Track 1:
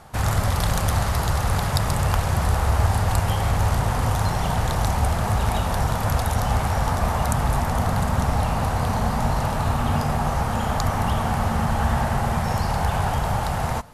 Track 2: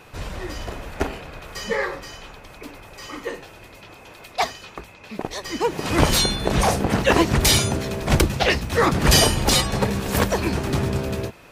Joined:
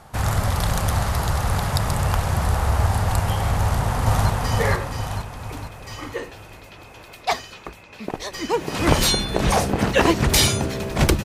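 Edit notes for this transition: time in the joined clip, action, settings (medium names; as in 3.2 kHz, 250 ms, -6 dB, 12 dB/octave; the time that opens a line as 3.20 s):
track 1
3.60–4.30 s: echo throw 460 ms, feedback 50%, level -1 dB
4.30 s: go over to track 2 from 1.41 s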